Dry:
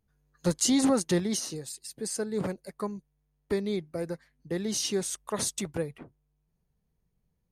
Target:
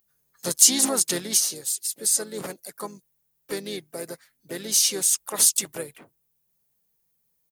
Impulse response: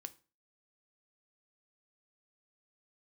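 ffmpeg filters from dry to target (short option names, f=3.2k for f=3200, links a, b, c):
-filter_complex "[0:a]acontrast=53,asplit=3[a][b][c];[b]asetrate=35002,aresample=44100,atempo=1.25992,volume=-9dB[d];[c]asetrate=55563,aresample=44100,atempo=0.793701,volume=-14dB[e];[a][d][e]amix=inputs=3:normalize=0,aemphasis=mode=production:type=riaa,volume=-5.5dB"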